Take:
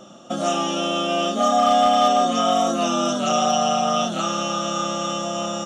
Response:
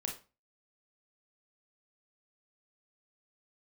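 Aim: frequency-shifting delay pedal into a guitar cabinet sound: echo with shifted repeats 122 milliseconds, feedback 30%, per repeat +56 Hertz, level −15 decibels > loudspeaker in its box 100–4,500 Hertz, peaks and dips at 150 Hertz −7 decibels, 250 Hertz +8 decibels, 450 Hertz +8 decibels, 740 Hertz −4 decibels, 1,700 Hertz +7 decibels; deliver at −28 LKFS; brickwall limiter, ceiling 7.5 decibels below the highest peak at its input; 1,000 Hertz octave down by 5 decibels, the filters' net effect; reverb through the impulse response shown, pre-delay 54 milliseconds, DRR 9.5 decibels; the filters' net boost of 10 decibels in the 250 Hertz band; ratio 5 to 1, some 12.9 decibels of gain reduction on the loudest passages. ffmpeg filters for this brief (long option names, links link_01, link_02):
-filter_complex "[0:a]equalizer=frequency=250:width_type=o:gain=6,equalizer=frequency=1000:width_type=o:gain=-6,acompressor=threshold=-30dB:ratio=5,alimiter=level_in=3dB:limit=-24dB:level=0:latency=1,volume=-3dB,asplit=2[link_01][link_02];[1:a]atrim=start_sample=2205,adelay=54[link_03];[link_02][link_03]afir=irnorm=-1:irlink=0,volume=-10dB[link_04];[link_01][link_04]amix=inputs=2:normalize=0,asplit=4[link_05][link_06][link_07][link_08];[link_06]adelay=122,afreqshift=56,volume=-15dB[link_09];[link_07]adelay=244,afreqshift=112,volume=-25.5dB[link_10];[link_08]adelay=366,afreqshift=168,volume=-35.9dB[link_11];[link_05][link_09][link_10][link_11]amix=inputs=4:normalize=0,highpass=100,equalizer=frequency=150:width_type=q:width=4:gain=-7,equalizer=frequency=250:width_type=q:width=4:gain=8,equalizer=frequency=450:width_type=q:width=4:gain=8,equalizer=frequency=740:width_type=q:width=4:gain=-4,equalizer=frequency=1700:width_type=q:width=4:gain=7,lowpass=frequency=4500:width=0.5412,lowpass=frequency=4500:width=1.3066,volume=4dB"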